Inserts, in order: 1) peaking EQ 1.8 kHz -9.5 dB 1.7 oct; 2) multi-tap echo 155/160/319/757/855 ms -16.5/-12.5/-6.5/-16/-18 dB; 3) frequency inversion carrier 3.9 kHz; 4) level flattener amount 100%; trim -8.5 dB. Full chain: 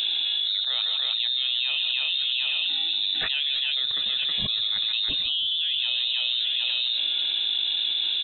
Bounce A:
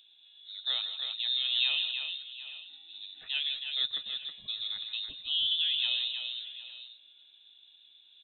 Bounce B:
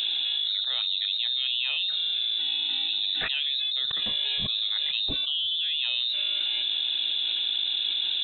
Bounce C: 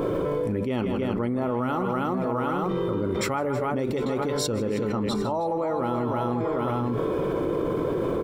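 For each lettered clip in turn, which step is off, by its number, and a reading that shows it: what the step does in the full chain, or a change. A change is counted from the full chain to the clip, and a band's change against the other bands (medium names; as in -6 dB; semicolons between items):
4, crest factor change +5.5 dB; 2, crest factor change -2.0 dB; 3, loudness change -4.0 LU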